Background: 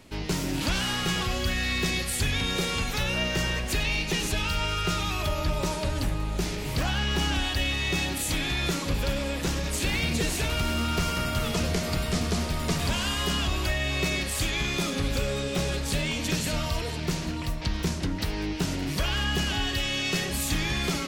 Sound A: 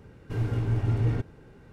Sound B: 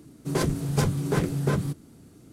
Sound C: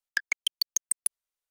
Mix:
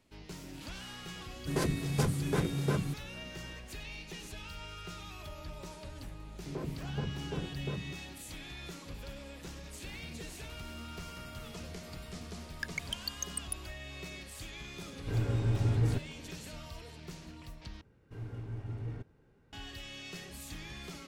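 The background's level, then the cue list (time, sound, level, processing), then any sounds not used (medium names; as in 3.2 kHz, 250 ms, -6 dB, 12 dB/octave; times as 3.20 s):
background -17.5 dB
1.21 s: add B -6 dB
6.20 s: add B -13 dB + Gaussian low-pass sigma 5.9 samples
12.46 s: add C -10 dB
14.77 s: add A -3.5 dB
17.81 s: replace with A -14.5 dB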